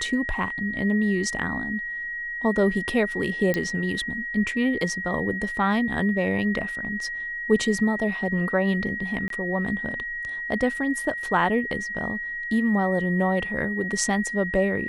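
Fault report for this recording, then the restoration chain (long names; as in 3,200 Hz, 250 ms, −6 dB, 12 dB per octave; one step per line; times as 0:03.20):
whistle 1,900 Hz −29 dBFS
0:03.54: click −11 dBFS
0:09.28–0:09.30: drop-out 23 ms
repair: click removal
notch filter 1,900 Hz, Q 30
repair the gap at 0:09.28, 23 ms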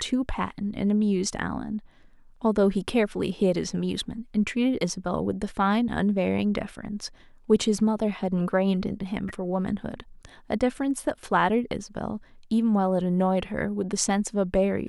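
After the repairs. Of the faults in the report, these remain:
none of them is left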